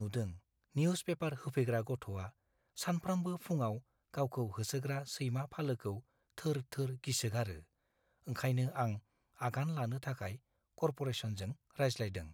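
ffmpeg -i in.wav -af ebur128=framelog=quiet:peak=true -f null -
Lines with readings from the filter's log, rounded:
Integrated loudness:
  I:         -38.4 LUFS
  Threshold: -48.8 LUFS
Loudness range:
  LRA:         1.7 LU
  Threshold: -59.0 LUFS
  LRA low:   -39.8 LUFS
  LRA high:  -38.1 LUFS
True peak:
  Peak:      -20.6 dBFS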